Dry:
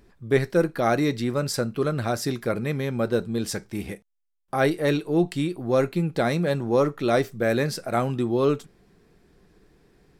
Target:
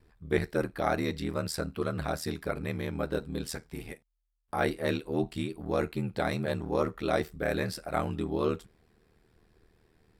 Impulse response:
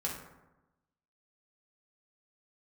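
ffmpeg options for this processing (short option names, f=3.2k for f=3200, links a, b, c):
-af "equalizer=f=200:t=o:w=0.33:g=-7,equalizer=f=315:t=o:w=0.33:g=-4,equalizer=f=500:t=o:w=0.33:g=-4,equalizer=f=6.3k:t=o:w=0.33:g=-6,aeval=exprs='val(0)*sin(2*PI*39*n/s)':c=same,volume=-2.5dB"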